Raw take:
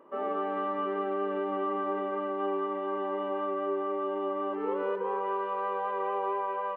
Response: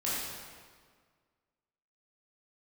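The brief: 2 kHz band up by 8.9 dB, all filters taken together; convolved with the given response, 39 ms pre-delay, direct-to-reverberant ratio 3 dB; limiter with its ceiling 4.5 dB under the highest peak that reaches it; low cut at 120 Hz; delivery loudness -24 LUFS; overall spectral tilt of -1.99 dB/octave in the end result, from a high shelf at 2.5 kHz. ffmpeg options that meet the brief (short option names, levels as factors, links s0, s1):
-filter_complex "[0:a]highpass=120,equalizer=f=2000:t=o:g=9,highshelf=f=2500:g=7.5,alimiter=limit=0.075:level=0:latency=1,asplit=2[s0][s1];[1:a]atrim=start_sample=2205,adelay=39[s2];[s1][s2]afir=irnorm=-1:irlink=0,volume=0.316[s3];[s0][s3]amix=inputs=2:normalize=0,volume=1.78"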